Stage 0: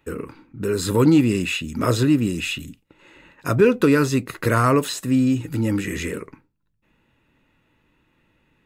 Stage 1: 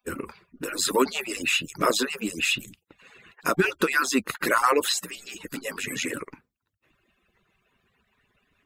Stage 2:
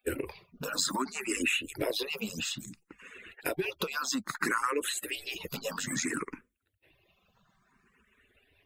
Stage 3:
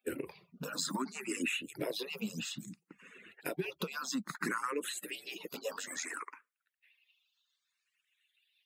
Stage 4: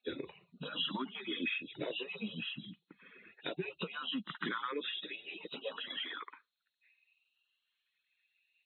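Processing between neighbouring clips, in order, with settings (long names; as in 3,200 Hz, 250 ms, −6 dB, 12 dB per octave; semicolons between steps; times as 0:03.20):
harmonic-percussive split with one part muted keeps percussive; low-shelf EQ 420 Hz −7.5 dB; boost into a limiter +12 dB; level −8 dB
downward compressor 6 to 1, threshold −29 dBFS, peak gain reduction 12.5 dB; frequency shifter mixed with the dry sound +0.6 Hz; level +4 dB
high-pass filter sweep 170 Hz → 3,600 Hz, 0:05.11–0:07.26; level −6.5 dB
hearing-aid frequency compression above 2,500 Hz 4 to 1; level −2.5 dB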